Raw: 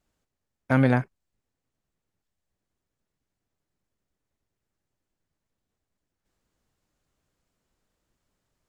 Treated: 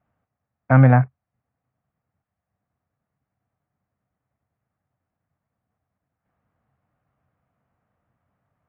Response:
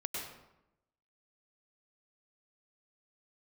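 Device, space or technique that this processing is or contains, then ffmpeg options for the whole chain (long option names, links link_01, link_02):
bass cabinet: -af "highpass=74,equalizer=frequency=87:width_type=q:width=4:gain=8,equalizer=frequency=130:width_type=q:width=4:gain=8,equalizer=frequency=200:width_type=q:width=4:gain=3,equalizer=frequency=370:width_type=q:width=4:gain=-8,equalizer=frequency=720:width_type=q:width=4:gain=8,equalizer=frequency=1200:width_type=q:width=4:gain=5,lowpass=frequency=2200:width=0.5412,lowpass=frequency=2200:width=1.3066,volume=3dB"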